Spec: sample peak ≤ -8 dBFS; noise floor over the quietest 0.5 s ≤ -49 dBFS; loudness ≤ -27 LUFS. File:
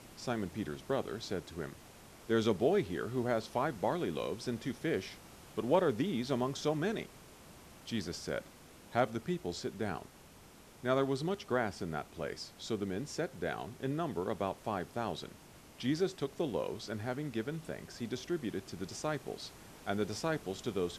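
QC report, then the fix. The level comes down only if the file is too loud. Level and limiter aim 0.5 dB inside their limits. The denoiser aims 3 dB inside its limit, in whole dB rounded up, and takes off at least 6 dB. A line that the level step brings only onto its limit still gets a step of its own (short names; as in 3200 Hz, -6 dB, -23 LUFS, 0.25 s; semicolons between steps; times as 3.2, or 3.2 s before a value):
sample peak -16.0 dBFS: OK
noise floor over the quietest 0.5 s -57 dBFS: OK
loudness -36.5 LUFS: OK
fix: none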